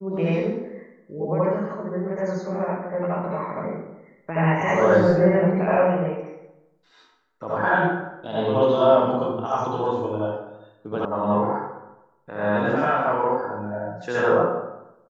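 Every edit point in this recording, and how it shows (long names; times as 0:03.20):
0:11.05: cut off before it has died away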